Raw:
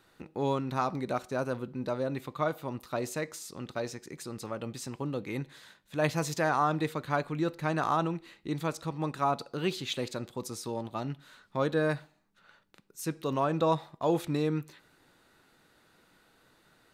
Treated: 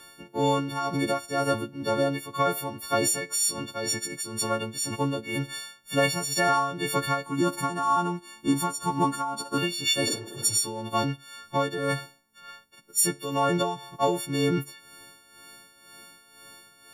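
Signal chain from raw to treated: partials quantised in pitch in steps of 4 st; 7.26–9.58 s: graphic EQ 125/250/500/1000/2000/4000/8000 Hz -4/+8/-8/+11/-7/-4/+5 dB; 10.09–10.54 s: spectral replace 210–2000 Hz both; compression 12:1, threshold -27 dBFS, peak gain reduction 13 dB; tremolo 2 Hz, depth 67%; trim +9 dB

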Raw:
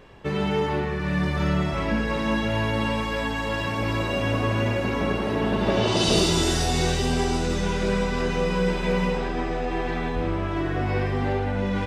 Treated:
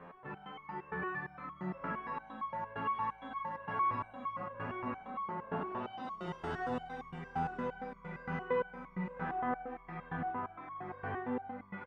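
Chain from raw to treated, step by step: reverse; upward compressor, threshold -25 dBFS; reverse; three-band isolator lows -17 dB, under 150 Hz, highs -14 dB, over 3.5 kHz; peak limiter -21.5 dBFS, peak gain reduction 11 dB; FFT filter 220 Hz 0 dB, 360 Hz -8 dB, 1.2 kHz +5 dB, 3.9 kHz -17 dB; early reflections 30 ms -7.5 dB, 74 ms -3.5 dB; resonator arpeggio 8.7 Hz 87–1100 Hz; trim +3 dB

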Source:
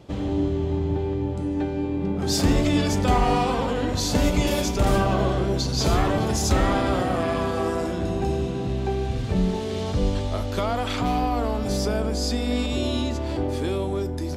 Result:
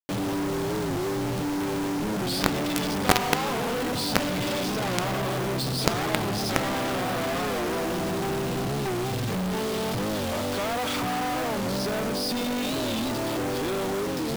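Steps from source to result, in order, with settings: Chebyshev band-pass 110–5200 Hz, order 5; companded quantiser 2-bit; warped record 45 rpm, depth 160 cents; trim -2 dB

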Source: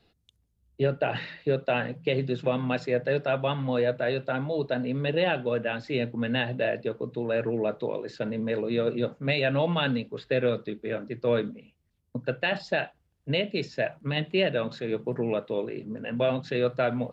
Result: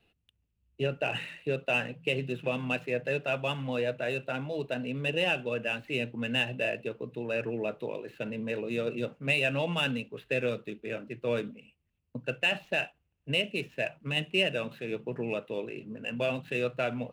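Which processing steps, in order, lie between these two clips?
median filter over 9 samples; peaking EQ 2.7 kHz +13 dB 0.42 oct; trim -5.5 dB

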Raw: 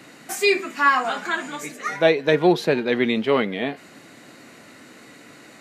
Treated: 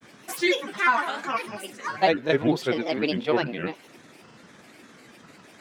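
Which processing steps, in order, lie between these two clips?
granulator, grains 20 per s, spray 22 ms, pitch spread up and down by 7 st; trim -3 dB

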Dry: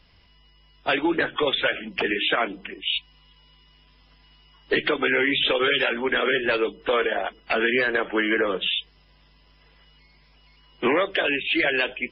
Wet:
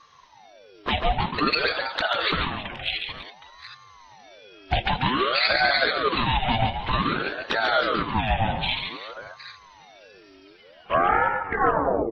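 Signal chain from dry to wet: tape stop on the ending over 1.72 s; comb 5.1 ms, depth 36%; in parallel at -1.5 dB: compression 5:1, threshold -38 dBFS, peak gain reduction 18.5 dB; on the sum: touch-sensitive flanger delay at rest 3.5 ms, full sweep at -18 dBFS; multi-tap echo 140/215/324/766 ms -6/-18.5/-14.5/-15 dB; ring modulator with a swept carrier 730 Hz, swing 55%, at 0.53 Hz; trim +2.5 dB

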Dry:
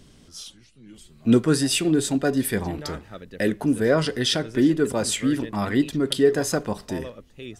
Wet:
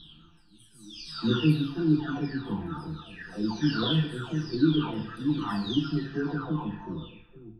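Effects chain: delay that grows with frequency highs early, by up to 954 ms; distance through air 150 m; static phaser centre 2.1 kHz, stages 6; FDN reverb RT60 0.75 s, low-frequency decay 0.85×, high-frequency decay 1×, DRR 4 dB

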